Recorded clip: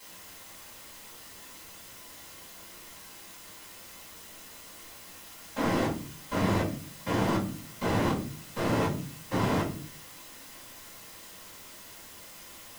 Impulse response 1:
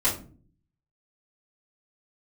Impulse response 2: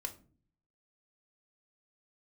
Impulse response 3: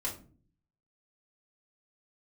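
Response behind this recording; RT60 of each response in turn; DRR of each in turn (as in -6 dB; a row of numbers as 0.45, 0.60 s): 1; not exponential, not exponential, not exponential; -10.0, 5.0, -4.5 dB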